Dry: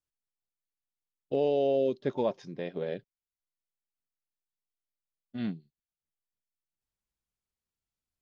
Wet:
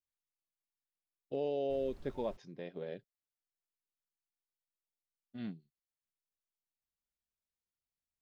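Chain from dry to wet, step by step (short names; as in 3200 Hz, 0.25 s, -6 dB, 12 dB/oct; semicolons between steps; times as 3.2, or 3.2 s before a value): 1.69–2.36 added noise brown -43 dBFS; gain -8.5 dB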